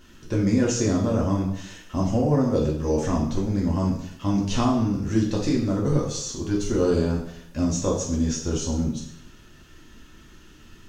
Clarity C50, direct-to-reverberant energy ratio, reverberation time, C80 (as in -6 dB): 5.0 dB, -4.0 dB, 0.70 s, 8.5 dB